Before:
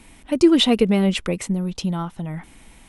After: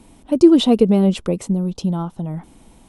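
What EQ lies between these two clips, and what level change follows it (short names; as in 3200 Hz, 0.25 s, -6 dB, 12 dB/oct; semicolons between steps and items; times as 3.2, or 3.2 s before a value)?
low shelf 90 Hz -7.5 dB; bell 2000 Hz -14.5 dB 1.3 oct; high shelf 4100 Hz -8.5 dB; +5.0 dB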